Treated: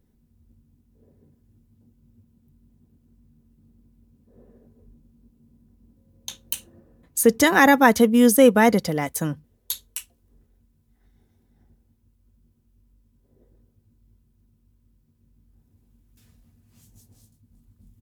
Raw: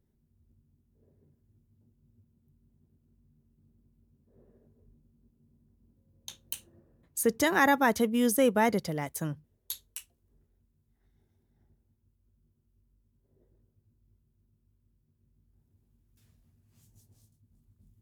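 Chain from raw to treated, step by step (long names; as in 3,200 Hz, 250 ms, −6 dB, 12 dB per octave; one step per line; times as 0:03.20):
comb filter 4 ms, depth 31%
level +8.5 dB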